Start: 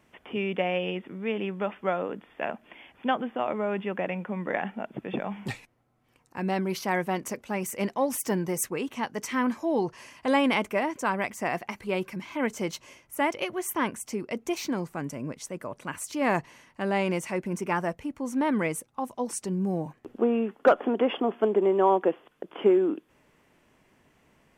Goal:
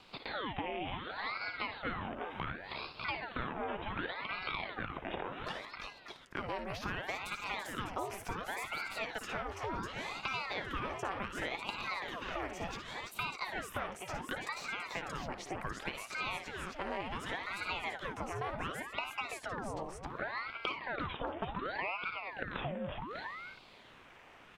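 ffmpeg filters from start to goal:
-filter_complex "[0:a]acompressor=threshold=-39dB:ratio=3,acrossover=split=500 4600:gain=0.2 1 0.2[a][b][c];[a][b][c]amix=inputs=3:normalize=0,asplit=2[d][e];[e]aecho=0:1:56|69|331|347|597:0.335|0.15|0.299|0.133|0.299[f];[d][f]amix=inputs=2:normalize=0,acrossover=split=1300|3000[g][h][i];[g]acompressor=threshold=-45dB:ratio=4[j];[h]acompressor=threshold=-59dB:ratio=4[k];[i]acompressor=threshold=-60dB:ratio=4[l];[j][k][l]amix=inputs=3:normalize=0,aeval=exprs='val(0)*sin(2*PI*1000*n/s+1000*0.85/0.68*sin(2*PI*0.68*n/s))':c=same,volume=11.5dB"

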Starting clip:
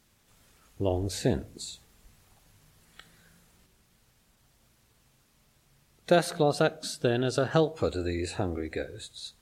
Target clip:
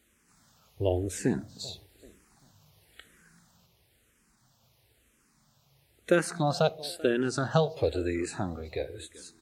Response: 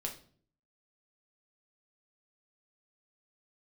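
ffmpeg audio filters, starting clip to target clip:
-filter_complex "[0:a]highpass=51,asplit=2[a][b];[b]adelay=388,lowpass=f=4.7k:p=1,volume=-20.5dB,asplit=2[c][d];[d]adelay=388,lowpass=f=4.7k:p=1,volume=0.38,asplit=2[e][f];[f]adelay=388,lowpass=f=4.7k:p=1,volume=0.38[g];[a][c][e][g]amix=inputs=4:normalize=0,asplit=2[h][i];[i]afreqshift=-1[j];[h][j]amix=inputs=2:normalize=1,volume=2dB"

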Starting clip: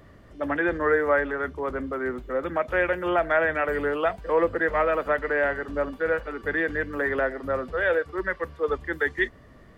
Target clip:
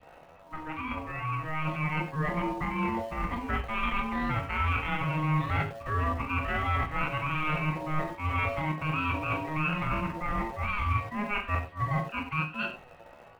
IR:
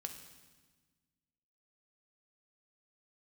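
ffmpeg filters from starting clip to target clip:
-filter_complex "[0:a]aeval=exprs='val(0)*sin(2*PI*570*n/s)':c=same,asplit=2[a][b];[b]adelay=29,volume=-7dB[c];[a][c]amix=inputs=2:normalize=0,areverse,acompressor=threshold=-34dB:ratio=8,areverse,asetrate=48091,aresample=44100,atempo=0.917004,lowpass=f=3.6k:w=0.5412,lowpass=f=3.6k:w=1.3066,acrossover=split=220|540[d][e][f];[e]aeval=exprs='val(0)*gte(abs(val(0)),0.00158)':c=same[g];[f]adynamicequalizer=threshold=0.00178:dfrequency=1100:dqfactor=1:tfrequency=1100:tqfactor=1:attack=5:release=100:ratio=0.375:range=2:mode=cutabove:tftype=bell[h];[d][g][h]amix=inputs=3:normalize=0,dynaudnorm=f=450:g=5:m=8dB,atempo=0.73[i];[1:a]atrim=start_sample=2205,afade=t=out:st=0.15:d=0.01,atrim=end_sample=7056[j];[i][j]afir=irnorm=-1:irlink=0,volume=5dB"

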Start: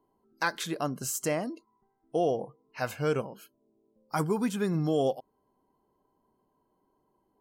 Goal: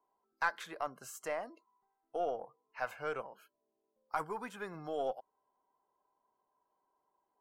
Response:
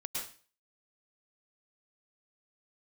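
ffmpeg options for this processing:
-filter_complex "[0:a]acrossover=split=580 2200:gain=0.1 1 0.2[a][b][c];[a][b][c]amix=inputs=3:normalize=0,aeval=exprs='0.168*(cos(1*acos(clip(val(0)/0.168,-1,1)))-cos(1*PI/2))+0.00531*(cos(6*acos(clip(val(0)/0.168,-1,1)))-cos(6*PI/2))':c=same,volume=-2dB"

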